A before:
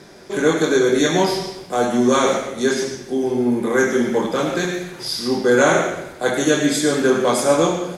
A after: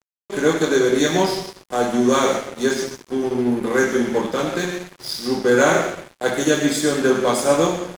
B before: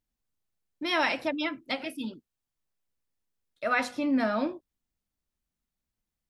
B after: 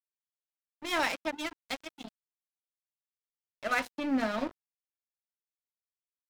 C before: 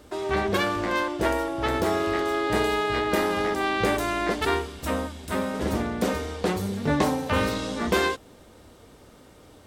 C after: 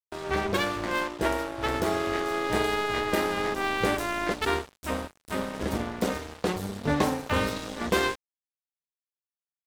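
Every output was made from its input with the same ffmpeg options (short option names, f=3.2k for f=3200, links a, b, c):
-af "aeval=exprs='sgn(val(0))*max(abs(val(0))-0.0237,0)':c=same"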